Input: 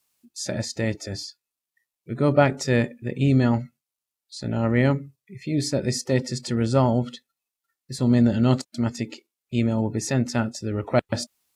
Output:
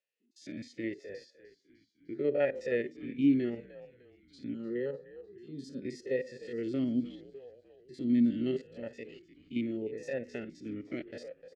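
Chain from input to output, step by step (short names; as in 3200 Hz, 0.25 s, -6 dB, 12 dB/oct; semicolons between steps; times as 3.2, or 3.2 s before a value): stepped spectrum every 50 ms; 4.54–5.82 fixed phaser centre 450 Hz, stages 8; frequency-shifting echo 0.302 s, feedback 54%, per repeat -70 Hz, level -16 dB; vowel sweep e-i 0.79 Hz; gain +1.5 dB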